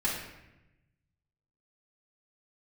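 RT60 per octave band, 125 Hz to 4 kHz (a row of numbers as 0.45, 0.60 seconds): 1.8, 1.3, 1.0, 0.90, 0.95, 0.70 seconds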